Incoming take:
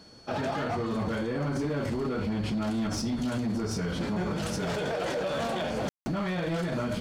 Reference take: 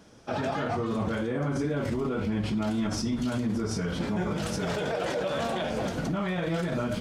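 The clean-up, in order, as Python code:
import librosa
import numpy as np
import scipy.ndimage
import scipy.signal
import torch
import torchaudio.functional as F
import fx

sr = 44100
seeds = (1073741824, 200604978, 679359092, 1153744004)

y = fx.fix_declip(x, sr, threshold_db=-25.5)
y = fx.notch(y, sr, hz=4400.0, q=30.0)
y = fx.fix_ambience(y, sr, seeds[0], print_start_s=0.0, print_end_s=0.5, start_s=5.89, end_s=6.06)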